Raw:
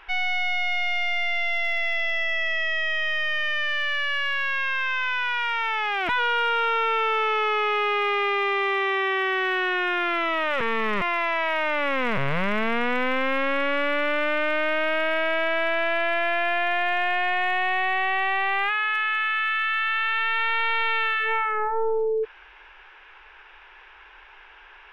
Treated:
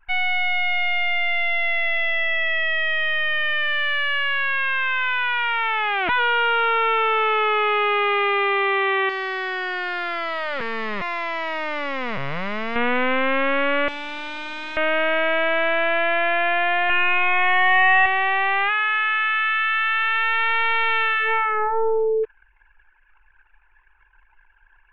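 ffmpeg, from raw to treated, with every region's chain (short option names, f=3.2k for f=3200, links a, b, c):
-filter_complex "[0:a]asettb=1/sr,asplit=3[a][b][c];[a]atrim=end=9.094[d];[b]atrim=start=9.09:end=12.76,asetpts=PTS-STARTPTS,afade=t=in:d=0.004:c=qsin,afade=t=out:st=3.666:d=0.004:c=qsin,highshelf=f=4k:g=11.5,volume=28dB,asoftclip=hard,volume=-28dB,adynamicsmooth=sensitivity=6.5:basefreq=630[e];[c]atrim=start=12.756[f];[d][e]acrossfade=d=0.004:c1=hsin:c2=qsin[g];[g][f]acrossfade=d=0.004:c1=qsin:c2=hsin,asettb=1/sr,asplit=3[h][i][j];[h]atrim=end=13.884[k];[i]atrim=start=13.88:end=14.77,asetpts=PTS-STARTPTS,afade=t=in:d=0.004:c=qsin,afade=t=out:st=0.886:d=0.004:c=qsin,highpass=f=260:w=0.5412,highpass=f=260:w=1.3066,aeval=exprs='0.133*sin(PI/2*5.01*val(0)/0.133)':c=same,aeval=exprs='(tanh(44.7*val(0)+0.5)-tanh(0.5))/44.7':c=same[l];[j]atrim=start=14.766[m];[k][l]acrossfade=d=0.004:c1=hsin:c2=qsin[n];[n][m]acrossfade=d=0.004:c1=qsin:c2=hsin,asettb=1/sr,asplit=3[o][p][q];[o]atrim=end=16.894[r];[p]atrim=start=16.89:end=18.06,asetpts=PTS-STARTPTS,afade=t=in:d=0.004:c=qsin,afade=t=out:st=1.166:d=0.004:c=qsin,highshelf=f=3.8k:t=q:w=1.5:g=-10,aecho=1:1:6.4:0.8,atrim=end_sample=51597[s];[q]atrim=start=18.056[t];[r][s]acrossfade=d=0.004:c1=hsin:c2=qsin[u];[u][t]acrossfade=d=0.004:c1=qsin:c2=hsin,anlmdn=0.251,lowpass=f=3.7k:w=0.5412,lowpass=f=3.7k:w=1.3066,volume=3.5dB"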